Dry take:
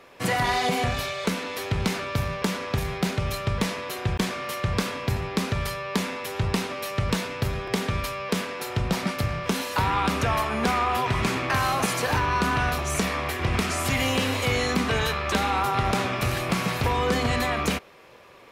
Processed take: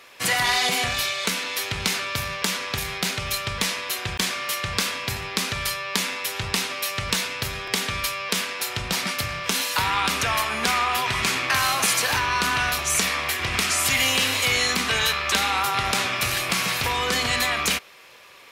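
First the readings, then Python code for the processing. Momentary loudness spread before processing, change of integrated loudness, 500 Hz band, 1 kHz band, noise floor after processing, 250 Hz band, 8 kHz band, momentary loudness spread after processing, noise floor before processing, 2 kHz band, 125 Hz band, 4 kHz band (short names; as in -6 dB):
5 LU, +3.0 dB, -4.0 dB, 0.0 dB, -36 dBFS, -6.5 dB, +9.5 dB, 7 LU, -38 dBFS, +5.0 dB, -7.0 dB, +8.0 dB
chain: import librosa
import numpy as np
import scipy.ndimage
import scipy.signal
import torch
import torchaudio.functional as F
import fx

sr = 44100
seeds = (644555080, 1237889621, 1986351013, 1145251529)

y = fx.tilt_shelf(x, sr, db=-8.5, hz=1200.0)
y = y * 10.0 ** (1.5 / 20.0)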